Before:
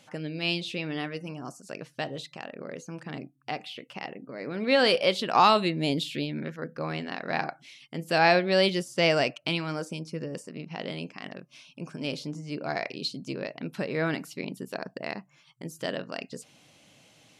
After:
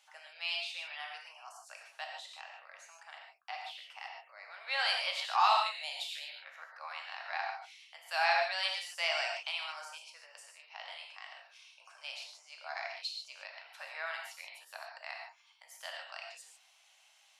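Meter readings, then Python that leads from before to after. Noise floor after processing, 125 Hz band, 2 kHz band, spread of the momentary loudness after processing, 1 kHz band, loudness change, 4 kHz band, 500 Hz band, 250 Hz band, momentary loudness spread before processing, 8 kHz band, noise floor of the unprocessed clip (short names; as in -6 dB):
-66 dBFS, under -40 dB, -5.0 dB, 21 LU, -6.0 dB, -7.0 dB, -5.0 dB, -16.5 dB, under -40 dB, 19 LU, -5.0 dB, -61 dBFS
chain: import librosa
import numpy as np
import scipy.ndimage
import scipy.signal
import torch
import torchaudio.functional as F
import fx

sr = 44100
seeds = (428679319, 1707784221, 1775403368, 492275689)

y = scipy.signal.sosfilt(scipy.signal.butter(8, 720.0, 'highpass', fs=sr, output='sos'), x)
y = fx.rev_gated(y, sr, seeds[0], gate_ms=170, shape='flat', drr_db=0.5)
y = y * librosa.db_to_amplitude(-8.0)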